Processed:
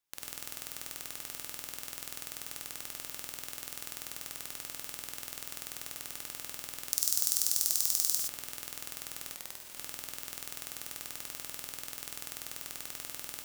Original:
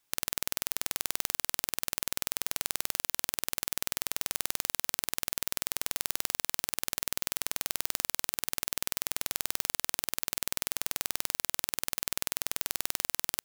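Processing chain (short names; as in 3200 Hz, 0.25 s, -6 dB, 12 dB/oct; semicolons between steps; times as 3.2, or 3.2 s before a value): 6.9–8.19 resonant high shelf 3700 Hz +13 dB, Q 1.5; non-linear reverb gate 0.14 s rising, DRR 0.5 dB; 9.35–9.77 ring modulator 650 Hz; gain -11 dB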